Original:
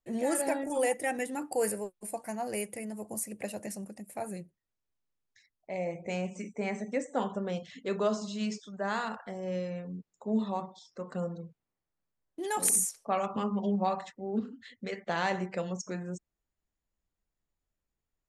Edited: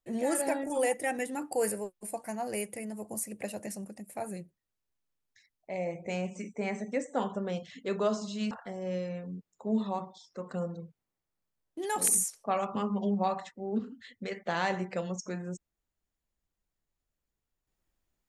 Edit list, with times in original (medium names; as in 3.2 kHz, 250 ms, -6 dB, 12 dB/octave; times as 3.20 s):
8.51–9.12 s: delete